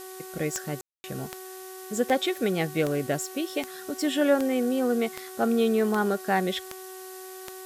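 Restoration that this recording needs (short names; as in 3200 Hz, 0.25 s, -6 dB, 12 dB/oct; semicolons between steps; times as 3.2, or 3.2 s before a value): de-click; de-hum 375.1 Hz, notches 5; room tone fill 0.81–1.04; denoiser 30 dB, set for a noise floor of -42 dBFS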